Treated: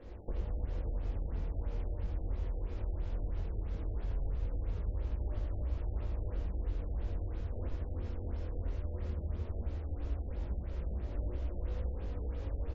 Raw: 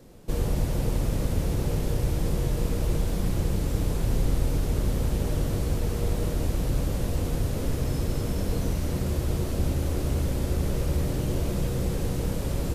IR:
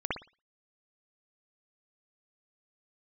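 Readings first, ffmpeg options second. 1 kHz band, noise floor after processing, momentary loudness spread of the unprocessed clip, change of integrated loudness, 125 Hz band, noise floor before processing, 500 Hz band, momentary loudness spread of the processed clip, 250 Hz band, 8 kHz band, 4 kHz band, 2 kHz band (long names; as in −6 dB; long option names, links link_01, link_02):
−14.5 dB, −42 dBFS, 2 LU, −11.0 dB, −11.5 dB, −30 dBFS, −15.0 dB, 2 LU, −17.5 dB, below −35 dB, −23.5 dB, −17.0 dB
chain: -filter_complex "[0:a]lowshelf=frequency=100:width_type=q:width=3:gain=8.5,asplit=2[link_01][link_02];[link_02]aecho=0:1:402:0.282[link_03];[link_01][link_03]amix=inputs=2:normalize=0,asoftclip=type=hard:threshold=-9dB,acompressor=threshold=-30dB:ratio=6,flanger=delay=20:depth=2.2:speed=0.18,bass=frequency=250:gain=-5,treble=frequency=4000:gain=-12,asplit=2[link_04][link_05];[link_05]aecho=0:1:81:0.422[link_06];[link_04][link_06]amix=inputs=2:normalize=0,afftfilt=real='re*lt(b*sr/1024,800*pow(7600/800,0.5+0.5*sin(2*PI*3*pts/sr)))':imag='im*lt(b*sr/1024,800*pow(7600/800,0.5+0.5*sin(2*PI*3*pts/sr)))':win_size=1024:overlap=0.75,volume=3.5dB"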